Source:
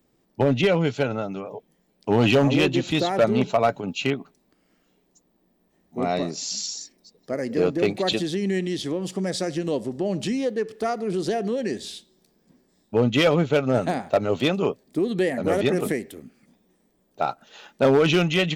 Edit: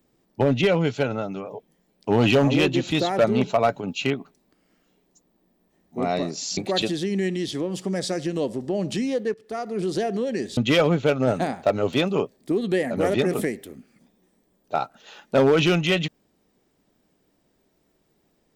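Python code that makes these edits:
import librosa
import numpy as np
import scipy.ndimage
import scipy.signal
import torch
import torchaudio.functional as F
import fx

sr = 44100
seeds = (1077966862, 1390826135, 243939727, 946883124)

y = fx.edit(x, sr, fx.cut(start_s=6.57, length_s=1.31),
    fx.fade_in_from(start_s=10.65, length_s=0.47, floor_db=-16.0),
    fx.cut(start_s=11.88, length_s=1.16), tone=tone)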